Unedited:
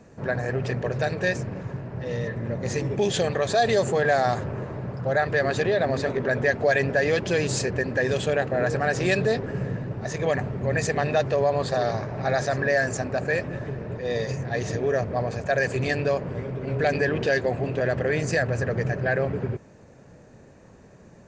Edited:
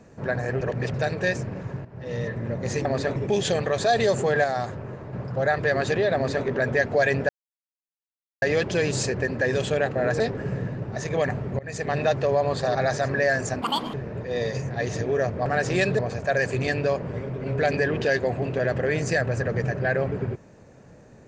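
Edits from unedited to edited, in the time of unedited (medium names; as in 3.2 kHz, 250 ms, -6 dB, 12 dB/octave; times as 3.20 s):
0.61–0.94 s: reverse
1.85–2.20 s: fade in, from -13.5 dB
4.13–4.82 s: gain -4.5 dB
5.84–6.15 s: copy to 2.85 s
6.98 s: insert silence 1.13 s
8.76–9.29 s: move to 15.20 s
10.68–11.07 s: fade in, from -23 dB
11.84–12.23 s: delete
13.10–13.68 s: speed 183%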